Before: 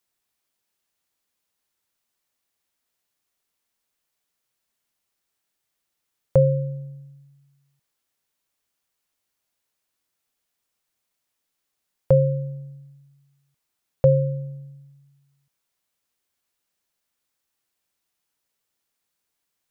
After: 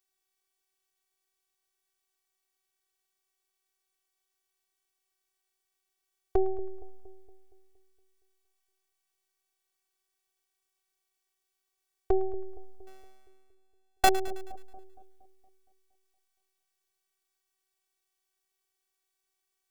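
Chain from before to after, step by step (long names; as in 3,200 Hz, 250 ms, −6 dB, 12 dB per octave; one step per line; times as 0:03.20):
0:12.87–0:14.09: samples sorted by size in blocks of 64 samples
phases set to zero 379 Hz
echo with a time of its own for lows and highs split 740 Hz, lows 233 ms, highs 107 ms, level −15.5 dB
level −1 dB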